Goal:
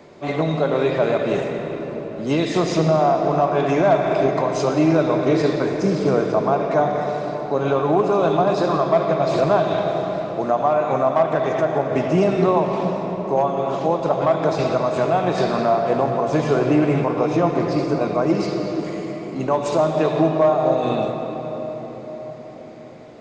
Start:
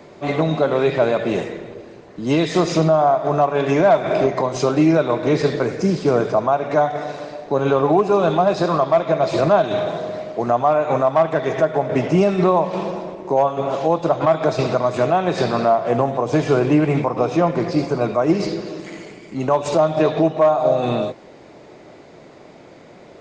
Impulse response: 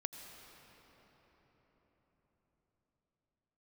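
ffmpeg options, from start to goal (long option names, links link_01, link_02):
-filter_complex "[0:a]bandreject=frequency=60:width_type=h:width=6,bandreject=frequency=120:width_type=h:width=6[link_01];[1:a]atrim=start_sample=2205[link_02];[link_01][link_02]afir=irnorm=-1:irlink=0"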